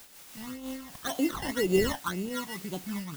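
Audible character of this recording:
aliases and images of a low sample rate 2,400 Hz, jitter 0%
phaser sweep stages 12, 1.9 Hz, lowest notch 400–1,800 Hz
a quantiser's noise floor 8 bits, dither triangular
amplitude modulation by smooth noise

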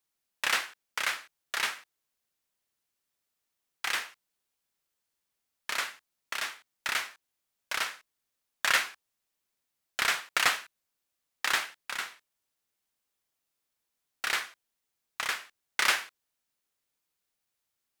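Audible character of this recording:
background noise floor −84 dBFS
spectral slope 0.0 dB per octave

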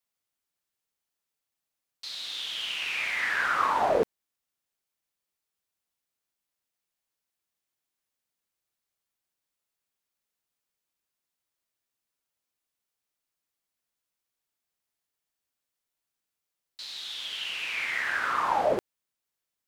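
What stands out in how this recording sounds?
background noise floor −87 dBFS
spectral slope −2.0 dB per octave

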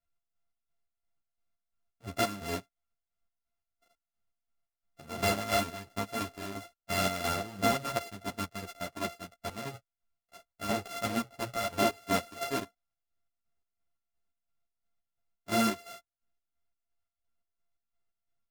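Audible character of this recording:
a buzz of ramps at a fixed pitch in blocks of 64 samples
chopped level 2.9 Hz, depth 60%, duty 50%
a shimmering, thickened sound

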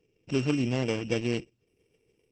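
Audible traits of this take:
a buzz of ramps at a fixed pitch in blocks of 16 samples
Opus

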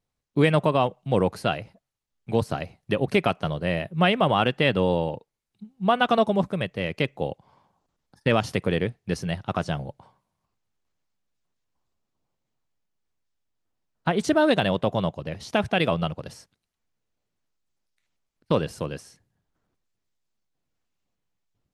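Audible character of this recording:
background noise floor −82 dBFS
spectral slope −4.5 dB per octave

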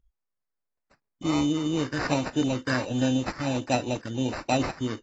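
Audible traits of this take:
phaser sweep stages 6, 1.4 Hz, lowest notch 790–3,000 Hz
aliases and images of a low sample rate 3,300 Hz, jitter 0%
AAC

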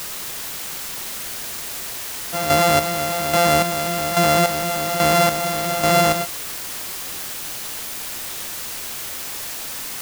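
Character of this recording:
a buzz of ramps at a fixed pitch in blocks of 64 samples
chopped level 1.2 Hz, depth 60%, duty 35%
a quantiser's noise floor 6 bits, dither triangular

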